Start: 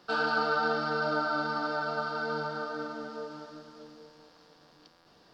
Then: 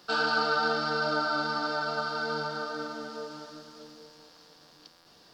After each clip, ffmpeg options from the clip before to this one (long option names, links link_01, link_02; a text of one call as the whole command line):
ffmpeg -i in.wav -af "highshelf=frequency=3700:gain=11.5" out.wav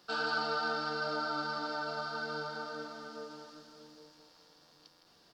ffmpeg -i in.wav -af "aecho=1:1:161:0.376,volume=-7dB" out.wav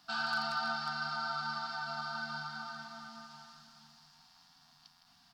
ffmpeg -i in.wav -af "aeval=exprs='0.0631*(abs(mod(val(0)/0.0631+3,4)-2)-1)':channel_layout=same,bandreject=frequency=90.17:width_type=h:width=4,bandreject=frequency=180.34:width_type=h:width=4,bandreject=frequency=270.51:width_type=h:width=4,bandreject=frequency=360.68:width_type=h:width=4,bandreject=frequency=450.85:width_type=h:width=4,bandreject=frequency=541.02:width_type=h:width=4,bandreject=frequency=631.19:width_type=h:width=4,bandreject=frequency=721.36:width_type=h:width=4,bandreject=frequency=811.53:width_type=h:width=4,bandreject=frequency=901.7:width_type=h:width=4,bandreject=frequency=991.87:width_type=h:width=4,bandreject=frequency=1082.04:width_type=h:width=4,bandreject=frequency=1172.21:width_type=h:width=4,bandreject=frequency=1262.38:width_type=h:width=4,bandreject=frequency=1352.55:width_type=h:width=4,bandreject=frequency=1442.72:width_type=h:width=4,bandreject=frequency=1532.89:width_type=h:width=4,bandreject=frequency=1623.06:width_type=h:width=4,bandreject=frequency=1713.23:width_type=h:width=4,bandreject=frequency=1803.4:width_type=h:width=4,bandreject=frequency=1893.57:width_type=h:width=4,bandreject=frequency=1983.74:width_type=h:width=4,bandreject=frequency=2073.91:width_type=h:width=4,bandreject=frequency=2164.08:width_type=h:width=4,bandreject=frequency=2254.25:width_type=h:width=4,bandreject=frequency=2344.42:width_type=h:width=4,bandreject=frequency=2434.59:width_type=h:width=4,bandreject=frequency=2524.76:width_type=h:width=4,bandreject=frequency=2614.93:width_type=h:width=4,bandreject=frequency=2705.1:width_type=h:width=4,bandreject=frequency=2795.27:width_type=h:width=4,afftfilt=real='re*(1-between(b*sr/4096,290,660))':imag='im*(1-between(b*sr/4096,290,660))':win_size=4096:overlap=0.75" out.wav